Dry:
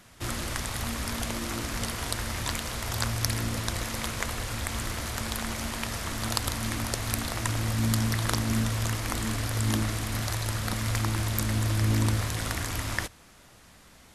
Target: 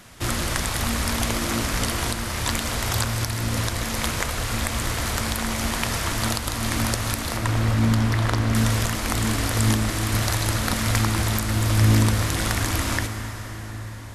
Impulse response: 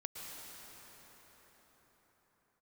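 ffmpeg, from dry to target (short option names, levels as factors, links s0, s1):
-filter_complex "[0:a]asettb=1/sr,asplit=3[s0][s1][s2];[s0]atrim=end=7.374[s3];[s1]atrim=start=7.37:end=8.55,asetpts=PTS-STARTPTS,afade=t=in:d=0.004:c=qsin,afade=t=out:st=1.176:d=0.004:c=qsin,lowpass=f=2300:p=1[s4];[s2]atrim=start=8.546[s5];[s3][s4]acrossfade=d=0.004:c1=hsin:c2=qsin[s6];[s6][s5]acrossfade=d=0.004:c1=qsin:c2=hsin,alimiter=limit=0.2:level=0:latency=1:release=412,asplit=2[s7][s8];[1:a]atrim=start_sample=2205[s9];[s8][s9]afir=irnorm=-1:irlink=0,volume=0.944[s10];[s7][s10]amix=inputs=2:normalize=0,volume=1.5"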